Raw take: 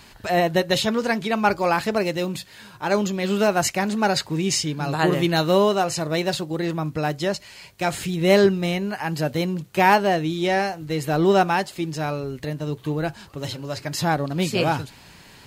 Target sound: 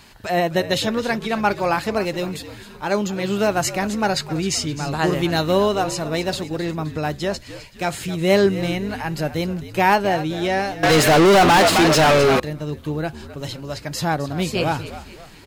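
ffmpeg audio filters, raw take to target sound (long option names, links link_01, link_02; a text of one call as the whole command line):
ffmpeg -i in.wav -filter_complex "[0:a]asplit=5[link_01][link_02][link_03][link_04][link_05];[link_02]adelay=261,afreqshift=-72,volume=-14dB[link_06];[link_03]adelay=522,afreqshift=-144,volume=-20.7dB[link_07];[link_04]adelay=783,afreqshift=-216,volume=-27.5dB[link_08];[link_05]adelay=1044,afreqshift=-288,volume=-34.2dB[link_09];[link_01][link_06][link_07][link_08][link_09]amix=inputs=5:normalize=0,asettb=1/sr,asplit=3[link_10][link_11][link_12];[link_10]atrim=end=10.834[link_13];[link_11]atrim=start=10.83:end=12.4,asetpts=PTS-STARTPTS,afade=type=in:duration=0.004:curve=qsin,afade=type=out:start_time=1.566:duration=0.004:curve=qsin,asplit=2[link_14][link_15];[link_15]highpass=frequency=720:poles=1,volume=36dB,asoftclip=type=tanh:threshold=-6.5dB[link_16];[link_14][link_16]amix=inputs=2:normalize=0,lowpass=frequency=4700:poles=1,volume=-6dB[link_17];[link_12]atrim=start=12.396[link_18];[link_13][link_17]acrossfade=duration=0.004:curve1=hsin:curve2=qsin[link_19];[link_19][link_18]acrossfade=duration=0.004:curve1=qsin:curve2=hsin" out.wav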